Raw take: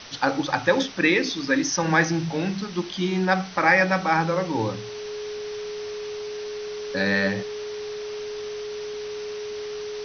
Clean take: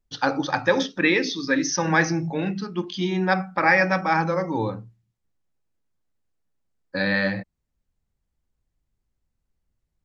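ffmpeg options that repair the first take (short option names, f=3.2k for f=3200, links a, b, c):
-af "bandreject=f=420:w=30,afwtdn=0.014"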